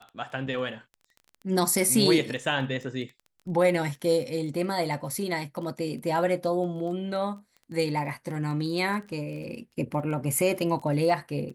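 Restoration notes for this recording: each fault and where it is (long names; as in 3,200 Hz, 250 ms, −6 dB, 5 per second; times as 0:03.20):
surface crackle 16 per second −36 dBFS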